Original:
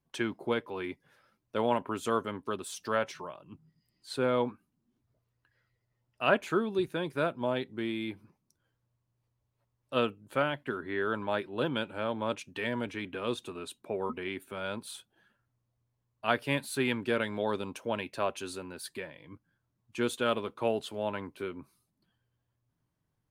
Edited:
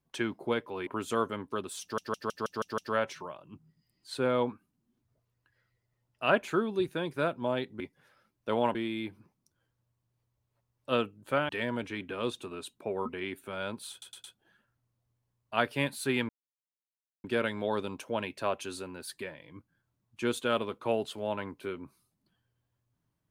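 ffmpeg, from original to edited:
-filter_complex "[0:a]asplit=15[s0][s1][s2][s3][s4][s5][s6][s7][s8][s9][s10][s11][s12][s13][s14];[s0]atrim=end=0.872[s15];[s1]atrim=start=1.818:end=2.932[s16];[s2]atrim=start=2.768:end=2.932[s17];[s3]atrim=start=2.768:end=2.932[s18];[s4]atrim=start=2.768:end=2.932[s19];[s5]atrim=start=2.768:end=2.932[s20];[s6]atrim=start=2.768:end=2.932[s21];[s7]atrim=start=2.768:end=7.792[s22];[s8]atrim=start=0.868:end=1.822[s23];[s9]atrim=start=7.788:end=10.532[s24];[s10]atrim=start=12.528:end=15.062[s25];[s11]atrim=start=14.948:end=15.062[s26];[s12]atrim=start=14.948:end=15.062[s27];[s13]atrim=start=14.948:end=17,asetpts=PTS-STARTPTS,afade=t=out:st=2.048:d=0.004:c=hsin,apad=pad_dur=0.95[s28];[s14]atrim=start=17,asetpts=PTS-STARTPTS,afade=t=in:d=0.004:c=hsin[s29];[s15][s16]acrossfade=d=0.004:c1=hsin:c2=hsin[s30];[s30][s17]acrossfade=d=0.004:c1=hsin:c2=hsin[s31];[s31][s18]acrossfade=d=0.004:c1=hsin:c2=hsin[s32];[s32][s19]acrossfade=d=0.004:c1=hsin:c2=hsin[s33];[s33][s20]acrossfade=d=0.004:c1=hsin:c2=hsin[s34];[s34][s21]acrossfade=d=0.004:c1=hsin:c2=hsin[s35];[s35][s22]acrossfade=d=0.004:c1=hsin:c2=hsin[s36];[s36][s23]acrossfade=d=0.004:c1=hsin:c2=hsin[s37];[s37][s24]acrossfade=d=0.004:c1=hsin:c2=hsin[s38];[s38][s25]acrossfade=d=0.004:c1=hsin:c2=hsin[s39];[s39][s26]acrossfade=d=0.004:c1=hsin:c2=hsin[s40];[s40][s27]acrossfade=d=0.004:c1=hsin:c2=hsin[s41];[s28][s29]concat=n=2:v=0:a=1[s42];[s41][s42]acrossfade=d=0.004:c1=hsin:c2=hsin"

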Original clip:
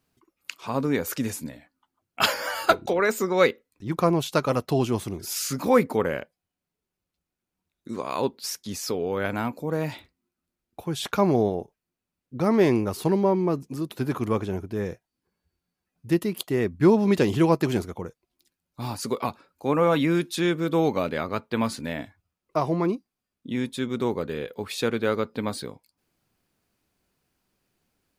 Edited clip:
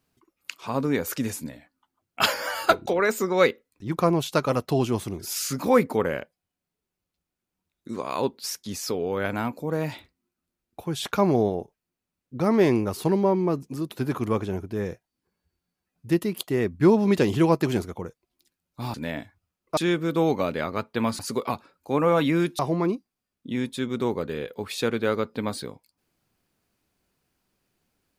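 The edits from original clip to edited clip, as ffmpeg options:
-filter_complex "[0:a]asplit=5[s0][s1][s2][s3][s4];[s0]atrim=end=18.942[s5];[s1]atrim=start=21.758:end=22.592[s6];[s2]atrim=start=20.338:end=21.762[s7];[s3]atrim=start=18.938:end=20.342[s8];[s4]atrim=start=22.588[s9];[s5][s6]acrossfade=d=0.004:c1=hsin:c2=hsin[s10];[s10][s7]acrossfade=d=0.004:c1=hsin:c2=hsin[s11];[s11][s8]acrossfade=d=0.004:c1=hsin:c2=hsin[s12];[s12][s9]acrossfade=d=0.004:c1=hsin:c2=hsin"

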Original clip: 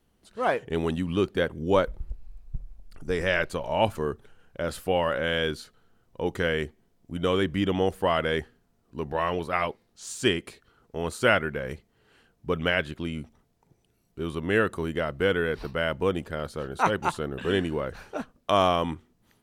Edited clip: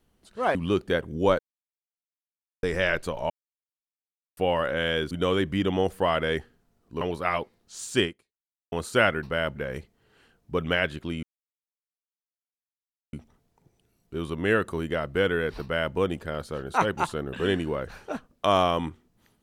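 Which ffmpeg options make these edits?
-filter_complex "[0:a]asplit=12[s0][s1][s2][s3][s4][s5][s6][s7][s8][s9][s10][s11];[s0]atrim=end=0.552[s12];[s1]atrim=start=1.018:end=1.86,asetpts=PTS-STARTPTS,afade=t=out:st=0.838:d=0.004:c=hsin[s13];[s2]atrim=start=1.86:end=3.1,asetpts=PTS-STARTPTS,volume=0[s14];[s3]atrim=start=3.1:end=3.77,asetpts=PTS-STARTPTS,afade=t=in:d=0.004:c=hsin,afade=t=out:st=0.666:d=0.004:c=hsin[s15];[s4]atrim=start=3.77:end=4.84,asetpts=PTS-STARTPTS,volume=0[s16];[s5]atrim=start=4.84:end=5.582,asetpts=PTS-STARTPTS,afade=t=in:d=0.004:c=hsin[s17];[s6]atrim=start=7.128:end=9.032[s18];[s7]atrim=start=9.288:end=11,asetpts=PTS-STARTPTS,afade=t=out:st=1.042:d=0.67:c=exp[s19];[s8]atrim=start=11:end=11.512,asetpts=PTS-STARTPTS,afade=t=in:d=0.004:c=hsin[s20];[s9]atrim=start=15.668:end=16.002[s21];[s10]atrim=start=11.508:end=13.18,asetpts=PTS-STARTPTS,afade=t=out:st=1.668:d=0.004:c=hsin,apad=pad_dur=1.9[s22];[s11]atrim=start=13.18,asetpts=PTS-STARTPTS,afade=t=in:d=0.004:c=hsin[s23];[s13][s14][s15][s16][s17]concat=n=5:v=0:a=1[s24];[s12][s24]acrossfade=d=0.004:c1=hsin:c2=hsin[s25];[s25][s18]acrossfade=d=0.004:c1=hsin:c2=hsin[s26];[s19][s20]concat=n=2:v=0:a=1[s27];[s26][s27]acrossfade=d=0.004:c1=hsin:c2=hsin[s28];[s28][s21]acrossfade=d=0.004:c1=hsin:c2=hsin[s29];[s22][s23]concat=n=2:v=0:a=1[s30];[s29][s30]acrossfade=d=0.004:c1=hsin:c2=hsin"

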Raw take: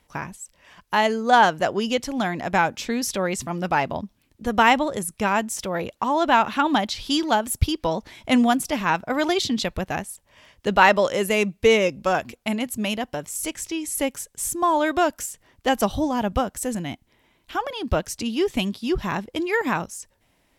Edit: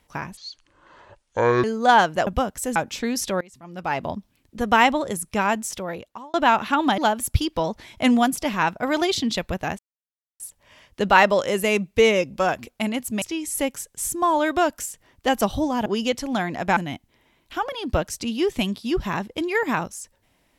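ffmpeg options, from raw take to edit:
-filter_complex "[0:a]asplit=12[s0][s1][s2][s3][s4][s5][s6][s7][s8][s9][s10][s11];[s0]atrim=end=0.374[s12];[s1]atrim=start=0.37:end=1.08,asetpts=PTS-STARTPTS,asetrate=24696,aresample=44100,atrim=end_sample=55912,asetpts=PTS-STARTPTS[s13];[s2]atrim=start=1.076:end=1.712[s14];[s3]atrim=start=16.258:end=16.752[s15];[s4]atrim=start=2.618:end=3.27,asetpts=PTS-STARTPTS,afade=t=out:st=0.648:d=0.004:c=hsin:silence=0.0749894[s16];[s5]atrim=start=3.27:end=6.2,asetpts=PTS-STARTPTS,afade=t=in:d=0.65:c=qua:silence=0.0749894,afade=t=out:st=2.22:d=0.71[s17];[s6]atrim=start=6.2:end=6.842,asetpts=PTS-STARTPTS,afade=t=in:d=0.004:c=hsin[s18];[s7]atrim=start=7.248:end=10.06,asetpts=PTS-STARTPTS,afade=t=out:st=2.808:d=0.004:c=hsin,apad=pad_dur=0.61[s19];[s8]atrim=start=10.06:end=12.882,asetpts=PTS-STARTPTS,afade=t=in:d=0.004:c=hsin[s20];[s9]atrim=start=13.618:end=16.262[s21];[s10]atrim=start=1.708:end=2.622[s22];[s11]atrim=start=16.748[s23];[s12][s13]acrossfade=d=0.004:c1=hsin:c2=hsin[s24];[s24][s14]acrossfade=d=0.004:c1=hsin:c2=hsin[s25];[s25][s15]acrossfade=d=0.004:c1=hsin:c2=hsin[s26];[s16][s17][s18]concat=n=3:v=0:a=1[s27];[s26][s27]acrossfade=d=0.004:c1=hsin:c2=hsin[s28];[s19][s20]concat=n=2:v=0:a=1[s29];[s28][s29]acrossfade=d=0.004:c1=hsin:c2=hsin[s30];[s30][s21]acrossfade=d=0.004:c1=hsin:c2=hsin[s31];[s31][s22]acrossfade=d=0.004:c1=hsin:c2=hsin[s32];[s32][s23]acrossfade=d=0.004:c1=hsin:c2=hsin"

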